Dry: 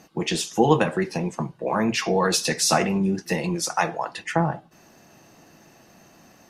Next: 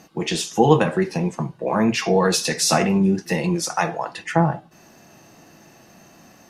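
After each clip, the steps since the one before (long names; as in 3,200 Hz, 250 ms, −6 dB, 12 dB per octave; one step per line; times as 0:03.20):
harmonic and percussive parts rebalanced harmonic +5 dB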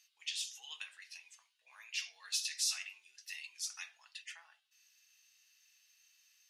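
four-pole ladder high-pass 2,300 Hz, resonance 30%
level −7.5 dB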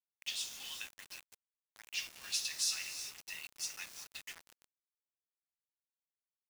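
reverb whose tail is shaped and stops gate 410 ms rising, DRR 8.5 dB
bit reduction 8 bits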